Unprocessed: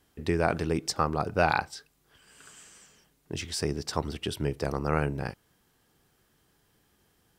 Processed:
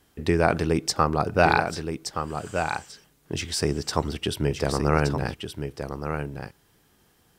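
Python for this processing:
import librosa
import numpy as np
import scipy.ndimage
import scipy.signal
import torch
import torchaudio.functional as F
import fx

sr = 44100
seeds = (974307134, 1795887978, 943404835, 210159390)

y = x + 10.0 ** (-7.5 / 20.0) * np.pad(x, (int(1172 * sr / 1000.0), 0))[:len(x)]
y = y * librosa.db_to_amplitude(5.0)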